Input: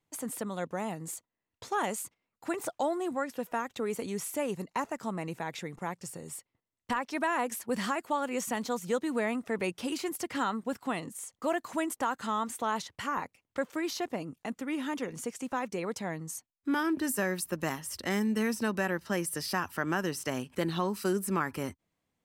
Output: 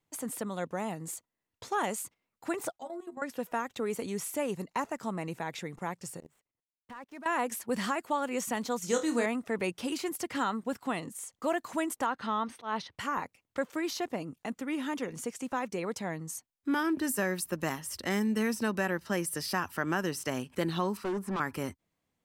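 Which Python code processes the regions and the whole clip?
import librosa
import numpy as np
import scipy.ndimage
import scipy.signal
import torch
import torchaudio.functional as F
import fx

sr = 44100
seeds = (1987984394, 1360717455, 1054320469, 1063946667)

y = fx.chain(x, sr, fx.stiff_resonator(f0_hz=82.0, decay_s=0.28, stiffness=0.008),
    fx.level_steps(step_db=13), at=(2.72, 3.22))
y = fx.chain(y, sr, fx.median_filter(points=9),
    fx.level_steps(step_db=22),
    fx.upward_expand(threshold_db=-55.0, expansion=1.5), at=(6.2, 7.26))
y = fx.chain(y, sr, fx.peak_eq(hz=6000.0, db=14.0, octaves=0.84),
    fx.room_flutter(wall_m=4.4, rt60_s=0.24), at=(8.82, 9.26))
y = fx.chain(y, sr, fx.savgol(points=15),
    fx.auto_swell(attack_ms=123.0), at=(12.06, 12.98))
y = fx.chain(y, sr, fx.peak_eq(hz=990.0, db=9.0, octaves=0.86),
    fx.overload_stage(gain_db=29.0),
    fx.lowpass(hz=2000.0, slope=6), at=(20.97, 21.4))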